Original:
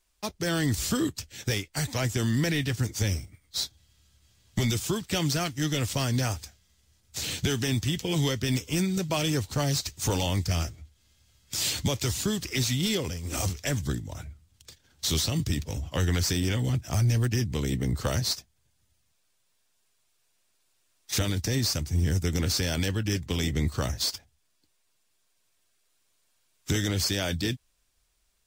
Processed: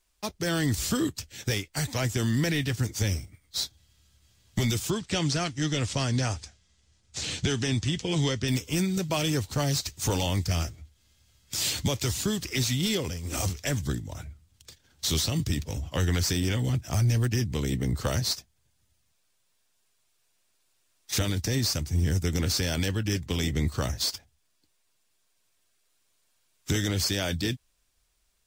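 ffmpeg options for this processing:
-filter_complex "[0:a]asettb=1/sr,asplit=3[s0][s1][s2];[s0]atrim=end=4.904[s3];[s1]atrim=start=4.9:end=8.48,asetpts=PTS-STARTPTS,afade=t=in:d=0.004:c=qsin,afade=t=out:st=3.576:d=0.004:c=qsin,lowpass=f=8400:w=0.5412,lowpass=f=8400:w=1.3066[s4];[s2]atrim=start=8.476[s5];[s3][s4]acrossfade=d=0.004:c1=hsin:c2=qsin[s6];[s6][s5]acrossfade=d=0.004:c1=qsin:c2=hsin"

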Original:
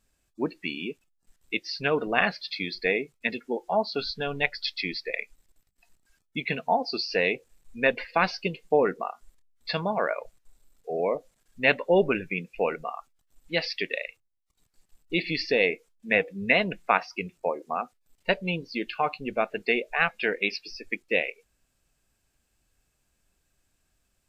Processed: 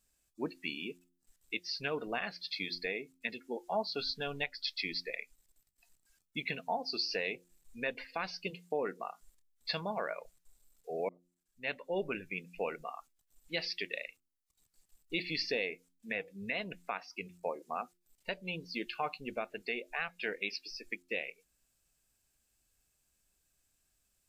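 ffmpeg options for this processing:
-filter_complex "[0:a]asplit=3[s0][s1][s2];[s0]afade=t=out:st=8.5:d=0.02[s3];[s1]highpass=130,afade=t=in:st=8.5:d=0.02,afade=t=out:st=9.02:d=0.02[s4];[s2]afade=t=in:st=9.02:d=0.02[s5];[s3][s4][s5]amix=inputs=3:normalize=0,asplit=2[s6][s7];[s6]atrim=end=11.09,asetpts=PTS-STARTPTS,afade=t=out:st=11.086:d=0.004:c=hsin[s8];[s7]atrim=start=11.09,asetpts=PTS-STARTPTS,afade=t=in:d=1.66[s9];[s8][s9]concat=n=2:v=0:a=1,alimiter=limit=0.178:level=0:latency=1:release=391,highshelf=f=4400:g=11,bandreject=f=88.19:t=h:w=4,bandreject=f=176.38:t=h:w=4,bandreject=f=264.57:t=h:w=4,bandreject=f=352.76:t=h:w=4,volume=0.376"

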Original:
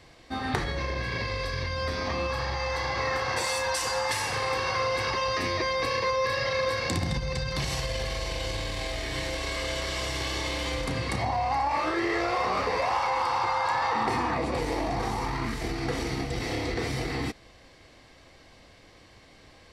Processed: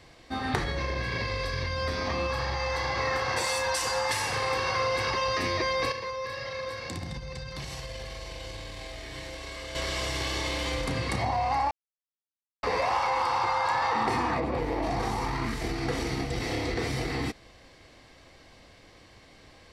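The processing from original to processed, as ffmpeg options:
-filter_complex "[0:a]asplit=3[s0][s1][s2];[s0]afade=t=out:st=14.39:d=0.02[s3];[s1]equalizer=f=8500:w=0.47:g=-14.5,afade=t=in:st=14.39:d=0.02,afade=t=out:st=14.82:d=0.02[s4];[s2]afade=t=in:st=14.82:d=0.02[s5];[s3][s4][s5]amix=inputs=3:normalize=0,asplit=5[s6][s7][s8][s9][s10];[s6]atrim=end=5.922[s11];[s7]atrim=start=5.918:end=9.752,asetpts=PTS-STARTPTS,volume=0.398[s12];[s8]atrim=start=9.748:end=11.71,asetpts=PTS-STARTPTS,afade=t=out:st=1.958:d=0.004:c=hsin[s13];[s9]atrim=start=11.71:end=12.63,asetpts=PTS-STARTPTS,volume=0[s14];[s10]atrim=start=12.63,asetpts=PTS-STARTPTS,afade=t=in:d=0.004:c=hsin[s15];[s11][s12]acrossfade=d=0.004:c1=hsin:c2=hsin[s16];[s13][s14][s15]concat=n=3:v=0:a=1[s17];[s16][s17]acrossfade=d=0.004:c1=hsin:c2=hsin"

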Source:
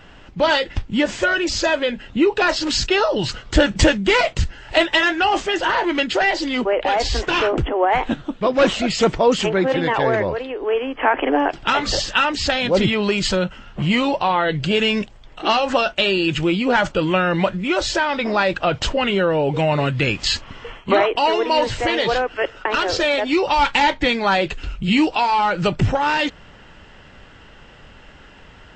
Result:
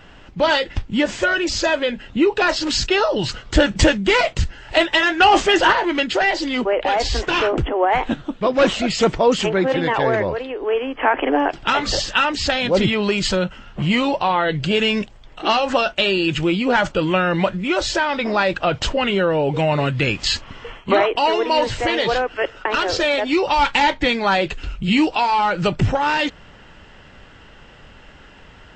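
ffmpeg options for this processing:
-filter_complex "[0:a]asettb=1/sr,asplit=3[s0][s1][s2];[s0]atrim=end=5.204[s3];[s1]atrim=start=5.2:end=5.73,asetpts=PTS-STARTPTS,afade=t=in:d=0.004:c=qsin,afade=t=out:st=0.526:d=0.004:c=qsin,acontrast=61[s4];[s2]atrim=start=5.726[s5];[s3][s4]acrossfade=d=0.004:c1=hsin:c2=qsin[s6];[s6][s5]acrossfade=d=0.004:c1=qsin:c2=hsin"

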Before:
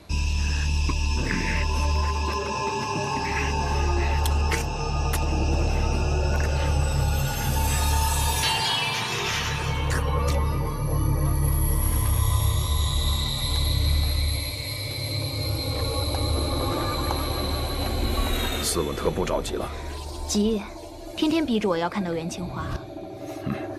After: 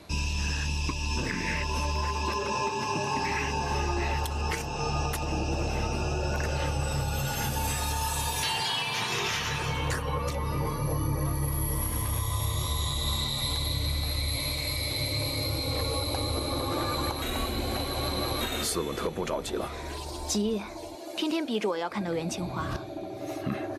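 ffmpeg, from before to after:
-filter_complex "[0:a]asplit=2[s0][s1];[s1]afade=t=in:st=13.81:d=0.01,afade=t=out:st=14.9:d=0.01,aecho=0:1:550|1100|1650|2200|2750|3300|3850|4400|4950:0.446684|0.290344|0.188724|0.12267|0.0797358|0.0518283|0.0336884|0.0218974|0.0142333[s2];[s0][s2]amix=inputs=2:normalize=0,asettb=1/sr,asplit=3[s3][s4][s5];[s3]atrim=end=20.954[s6];[s4]atrim=start=20.95:end=21.91,asetpts=PTS-STARTPTS,afade=t=in:d=0.004:c=qsin,afade=t=out:st=0.956:d=0.004:c=qsin,highpass=260[s7];[s5]atrim=start=21.906[s8];[s6][s7]acrossfade=d=0.004:c1=hsin:c2=qsin[s9];[s9][s8]acrossfade=d=0.004:c1=qsin:c2=hsin,asplit=3[s10][s11][s12];[s10]atrim=end=17.222[s13];[s11]atrim=start=17.218:end=18.412,asetpts=PTS-STARTPTS,areverse[s14];[s12]atrim=start=18.408[s15];[s13][s14]acrossfade=d=0.004:c1=hsin:c2=hsin[s16];[s16][s15]acrossfade=d=0.004:c1=hsin:c2=hsin,lowshelf=f=75:g=-10,alimiter=limit=0.112:level=0:latency=1:release=324"

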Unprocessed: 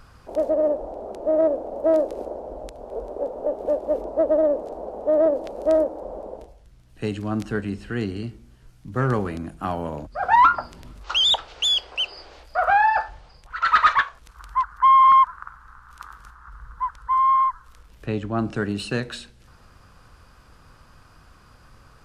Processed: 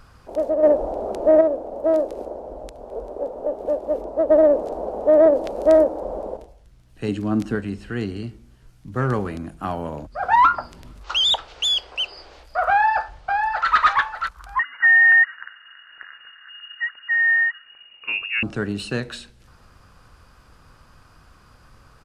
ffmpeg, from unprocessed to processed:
-filter_complex "[0:a]asplit=3[s0][s1][s2];[s0]afade=t=out:st=0.62:d=0.02[s3];[s1]acontrast=88,afade=t=in:st=0.62:d=0.02,afade=t=out:st=1.4:d=0.02[s4];[s2]afade=t=in:st=1.4:d=0.02[s5];[s3][s4][s5]amix=inputs=3:normalize=0,asettb=1/sr,asplit=3[s6][s7][s8];[s6]atrim=end=4.304[s9];[s7]atrim=start=4.3:end=6.37,asetpts=PTS-STARTPTS,afade=t=in:d=0.004:c=qsin,afade=t=out:st=2.066:d=0.004:c=qsin,acontrast=35[s10];[s8]atrim=start=6.366[s11];[s9][s10]acrossfade=d=0.004:c1=hsin:c2=qsin[s12];[s12][s11]acrossfade=d=0.004:c1=qsin:c2=hsin,asettb=1/sr,asplit=3[s13][s14][s15];[s13]atrim=end=7.084[s16];[s14]atrim=start=7.08:end=7.55,asetpts=PTS-STARTPTS,afade=t=in:d=0.004:c=qsin,afade=t=out:st=0.466:d=0.004:c=qsin,equalizer=f=270:w=1.3:g=7[s17];[s15]atrim=start=7.546[s18];[s16][s17]acrossfade=d=0.004:c1=hsin:c2=qsin[s19];[s19][s18]acrossfade=d=0.004:c1=qsin:c2=hsin,asplit=2[s20][s21];[s21]afade=t=in:st=12.69:d=0.01,afade=t=out:st=13.69:d=0.01,aecho=0:1:590|1180|1770|2360:0.595662|0.178699|0.0536096|0.0160829[s22];[s20][s22]amix=inputs=2:normalize=0,asettb=1/sr,asplit=3[s23][s24][s25];[s23]atrim=end=14.594[s26];[s24]atrim=start=14.59:end=18.43,asetpts=PTS-STARTPTS,afade=t=in:d=0.004:c=qsin,afade=t=out:st=3.836:d=0.004:c=qsin,lowpass=f=2500:t=q:w=0.5098,lowpass=f=2500:t=q:w=0.6013,lowpass=f=2500:t=q:w=0.9,lowpass=f=2500:t=q:w=2.563,afreqshift=-2900[s27];[s25]atrim=start=18.426[s28];[s26][s27]acrossfade=d=0.004:c1=hsin:c2=qsin[s29];[s29][s28]acrossfade=d=0.004:c1=qsin:c2=hsin"

